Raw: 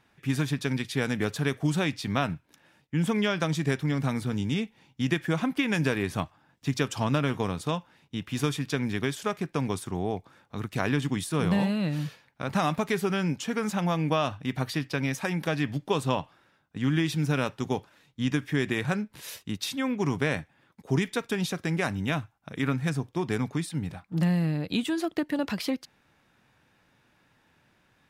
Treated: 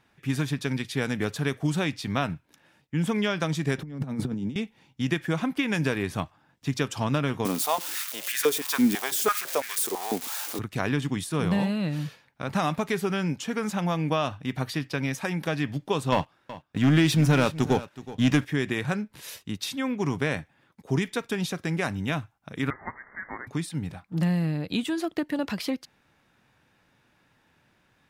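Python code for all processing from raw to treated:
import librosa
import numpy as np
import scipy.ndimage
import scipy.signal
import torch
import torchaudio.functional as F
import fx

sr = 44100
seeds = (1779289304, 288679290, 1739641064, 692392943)

y = fx.chain(x, sr, fx.highpass(hz=130.0, slope=24),
    fx.tilt_shelf(db=7.0, hz=790.0),
    fx.over_compress(threshold_db=-29.0, ratio=-0.5), at=(3.78, 4.56))
y = fx.chain(y, sr, fx.crossing_spikes(level_db=-22.0),
    fx.filter_held_highpass(hz=6.0, low_hz=250.0, high_hz=1700.0), at=(7.45, 10.59))
y = fx.chain(y, sr, fx.leveller(passes=2),
    fx.echo_single(ms=373, db=-16.0), at=(16.12, 18.45))
y = fx.chain(y, sr, fx.zero_step(step_db=-38.0),
    fx.ellip_highpass(hz=570.0, order=4, stop_db=50),
    fx.freq_invert(carrier_hz=2600), at=(22.7, 23.47))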